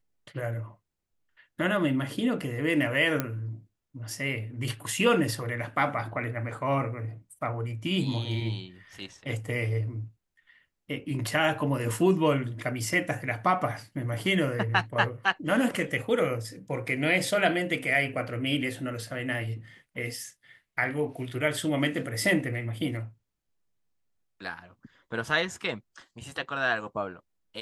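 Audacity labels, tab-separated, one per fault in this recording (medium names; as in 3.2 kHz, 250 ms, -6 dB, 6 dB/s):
3.200000	3.200000	pop -12 dBFS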